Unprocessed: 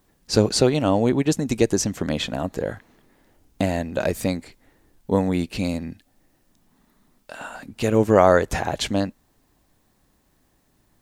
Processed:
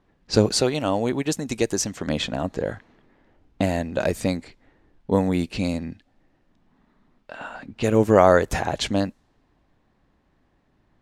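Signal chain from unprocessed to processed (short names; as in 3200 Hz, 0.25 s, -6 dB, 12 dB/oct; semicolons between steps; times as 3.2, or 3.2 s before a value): low-pass opened by the level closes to 2800 Hz, open at -18 dBFS; 0.55–2.07 low shelf 500 Hz -6.5 dB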